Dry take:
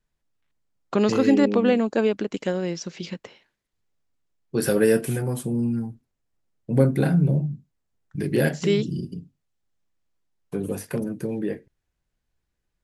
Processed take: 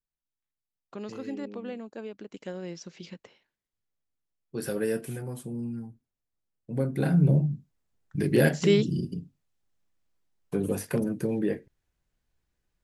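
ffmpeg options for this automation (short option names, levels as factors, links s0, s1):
-af "afade=t=in:st=2.11:d=0.61:silence=0.398107,afade=t=in:st=6.89:d=0.41:silence=0.316228"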